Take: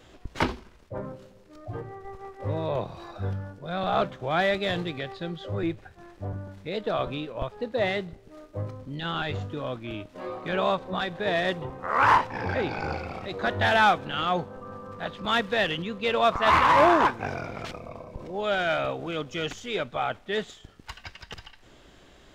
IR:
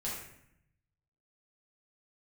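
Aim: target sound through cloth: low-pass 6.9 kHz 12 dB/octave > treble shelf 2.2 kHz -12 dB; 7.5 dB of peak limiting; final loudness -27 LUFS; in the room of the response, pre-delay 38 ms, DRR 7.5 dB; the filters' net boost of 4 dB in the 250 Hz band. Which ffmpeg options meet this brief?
-filter_complex "[0:a]equalizer=f=250:t=o:g=6,alimiter=limit=0.178:level=0:latency=1,asplit=2[s0][s1];[1:a]atrim=start_sample=2205,adelay=38[s2];[s1][s2]afir=irnorm=-1:irlink=0,volume=0.316[s3];[s0][s3]amix=inputs=2:normalize=0,lowpass=6900,highshelf=f=2200:g=-12,volume=1.33"

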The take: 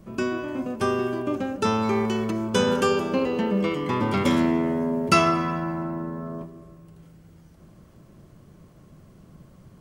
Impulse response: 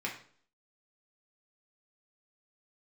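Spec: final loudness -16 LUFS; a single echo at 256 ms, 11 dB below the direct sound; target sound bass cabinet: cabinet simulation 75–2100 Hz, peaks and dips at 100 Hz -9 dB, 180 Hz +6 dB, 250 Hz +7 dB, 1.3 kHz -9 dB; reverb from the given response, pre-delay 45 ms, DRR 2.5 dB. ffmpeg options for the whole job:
-filter_complex "[0:a]aecho=1:1:256:0.282,asplit=2[s0][s1];[1:a]atrim=start_sample=2205,adelay=45[s2];[s1][s2]afir=irnorm=-1:irlink=0,volume=0.473[s3];[s0][s3]amix=inputs=2:normalize=0,highpass=f=75:w=0.5412,highpass=f=75:w=1.3066,equalizer=f=100:t=q:w=4:g=-9,equalizer=f=180:t=q:w=4:g=6,equalizer=f=250:t=q:w=4:g=7,equalizer=f=1300:t=q:w=4:g=-9,lowpass=f=2100:w=0.5412,lowpass=f=2100:w=1.3066,volume=1.33"

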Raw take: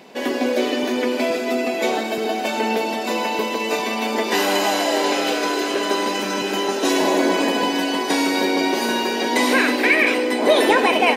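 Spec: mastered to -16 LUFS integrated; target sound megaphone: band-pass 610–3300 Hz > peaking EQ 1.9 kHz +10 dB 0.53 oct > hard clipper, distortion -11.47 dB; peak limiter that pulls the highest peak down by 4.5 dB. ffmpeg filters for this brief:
-af "alimiter=limit=0.282:level=0:latency=1,highpass=610,lowpass=3300,equalizer=f=1900:t=o:w=0.53:g=10,asoftclip=type=hard:threshold=0.126,volume=2"

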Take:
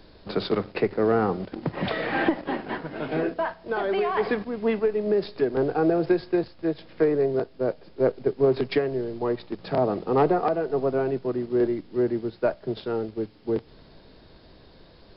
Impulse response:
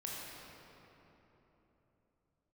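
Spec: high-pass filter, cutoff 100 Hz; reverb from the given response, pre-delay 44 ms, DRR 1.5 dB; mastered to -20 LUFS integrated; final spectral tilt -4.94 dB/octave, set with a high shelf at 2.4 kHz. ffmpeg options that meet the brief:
-filter_complex "[0:a]highpass=100,highshelf=f=2400:g=5.5,asplit=2[s0][s1];[1:a]atrim=start_sample=2205,adelay=44[s2];[s1][s2]afir=irnorm=-1:irlink=0,volume=0.794[s3];[s0][s3]amix=inputs=2:normalize=0,volume=1.41"

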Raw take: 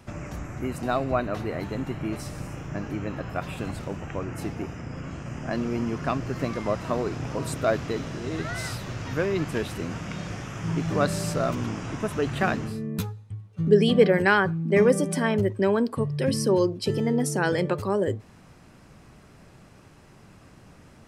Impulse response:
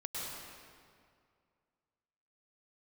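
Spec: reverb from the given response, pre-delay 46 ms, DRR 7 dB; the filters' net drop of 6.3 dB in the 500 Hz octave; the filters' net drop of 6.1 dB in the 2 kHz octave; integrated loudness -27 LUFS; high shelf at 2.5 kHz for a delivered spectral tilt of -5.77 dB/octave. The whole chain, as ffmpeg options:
-filter_complex "[0:a]equalizer=f=500:t=o:g=-7.5,equalizer=f=2000:t=o:g=-5,highshelf=f=2500:g=-7,asplit=2[s0][s1];[1:a]atrim=start_sample=2205,adelay=46[s2];[s1][s2]afir=irnorm=-1:irlink=0,volume=0.355[s3];[s0][s3]amix=inputs=2:normalize=0,volume=1.33"

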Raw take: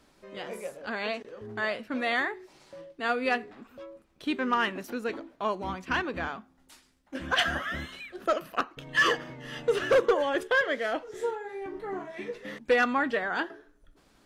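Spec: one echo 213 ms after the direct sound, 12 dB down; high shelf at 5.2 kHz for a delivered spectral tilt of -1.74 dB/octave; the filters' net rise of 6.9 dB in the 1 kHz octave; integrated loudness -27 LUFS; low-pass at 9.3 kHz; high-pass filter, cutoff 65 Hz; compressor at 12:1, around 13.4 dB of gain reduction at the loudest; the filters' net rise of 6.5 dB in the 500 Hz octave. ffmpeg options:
-af "highpass=65,lowpass=9300,equalizer=f=500:t=o:g=5.5,equalizer=f=1000:t=o:g=7,highshelf=f=5200:g=7.5,acompressor=threshold=0.0562:ratio=12,aecho=1:1:213:0.251,volume=1.68"

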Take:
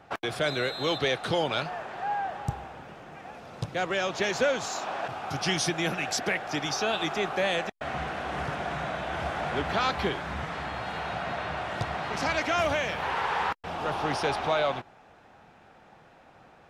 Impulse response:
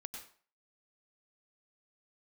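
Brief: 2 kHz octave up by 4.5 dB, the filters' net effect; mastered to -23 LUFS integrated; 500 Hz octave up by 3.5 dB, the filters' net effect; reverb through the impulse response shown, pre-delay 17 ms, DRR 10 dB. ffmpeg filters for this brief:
-filter_complex "[0:a]equalizer=f=500:t=o:g=4,equalizer=f=2000:t=o:g=5.5,asplit=2[s0][s1];[1:a]atrim=start_sample=2205,adelay=17[s2];[s1][s2]afir=irnorm=-1:irlink=0,volume=0.447[s3];[s0][s3]amix=inputs=2:normalize=0,volume=1.41"

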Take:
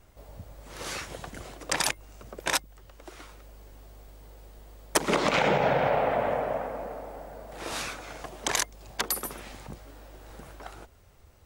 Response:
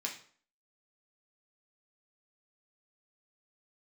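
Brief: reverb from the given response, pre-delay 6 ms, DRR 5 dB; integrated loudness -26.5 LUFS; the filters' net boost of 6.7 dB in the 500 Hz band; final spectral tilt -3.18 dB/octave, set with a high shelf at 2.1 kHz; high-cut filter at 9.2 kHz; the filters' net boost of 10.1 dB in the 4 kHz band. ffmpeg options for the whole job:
-filter_complex "[0:a]lowpass=9200,equalizer=f=500:t=o:g=7.5,highshelf=f=2100:g=6.5,equalizer=f=4000:t=o:g=6.5,asplit=2[s0][s1];[1:a]atrim=start_sample=2205,adelay=6[s2];[s1][s2]afir=irnorm=-1:irlink=0,volume=0.473[s3];[s0][s3]amix=inputs=2:normalize=0,volume=0.562"

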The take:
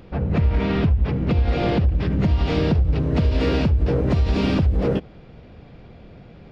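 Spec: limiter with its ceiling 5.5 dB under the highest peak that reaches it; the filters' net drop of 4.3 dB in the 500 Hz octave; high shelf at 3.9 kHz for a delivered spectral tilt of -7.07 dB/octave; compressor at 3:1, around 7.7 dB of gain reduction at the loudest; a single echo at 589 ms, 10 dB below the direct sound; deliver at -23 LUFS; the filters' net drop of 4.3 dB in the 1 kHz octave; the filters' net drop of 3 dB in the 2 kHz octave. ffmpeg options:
-af "equalizer=f=500:t=o:g=-4.5,equalizer=f=1000:t=o:g=-3.5,equalizer=f=2000:t=o:g=-4,highshelf=f=3900:g=4.5,acompressor=threshold=0.0562:ratio=3,alimiter=limit=0.0708:level=0:latency=1,aecho=1:1:589:0.316,volume=2.51"

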